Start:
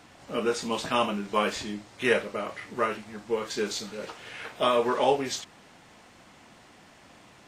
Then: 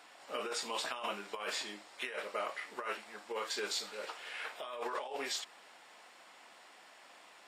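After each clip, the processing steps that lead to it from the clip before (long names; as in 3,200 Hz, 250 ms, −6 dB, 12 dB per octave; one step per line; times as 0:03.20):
high-pass filter 590 Hz 12 dB per octave
notch filter 6,200 Hz, Q 8.9
compressor whose output falls as the input rises −33 dBFS, ratio −1
level −5.5 dB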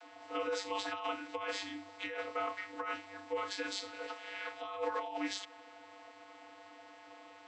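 dynamic equaliser 510 Hz, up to −5 dB, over −53 dBFS, Q 0.85
channel vocoder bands 32, square 98.3 Hz
level +3.5 dB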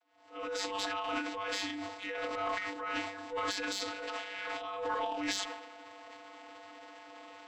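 fade in at the beginning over 0.80 s
harmonic generator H 5 −20 dB, 6 −30 dB, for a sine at −23.5 dBFS
transient designer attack −7 dB, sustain +11 dB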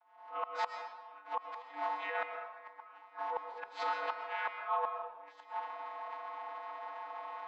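four-pole ladder band-pass 1,000 Hz, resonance 60%
gate with flip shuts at −40 dBFS, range −26 dB
convolution reverb RT60 1.1 s, pre-delay 85 ms, DRR 5 dB
level +16.5 dB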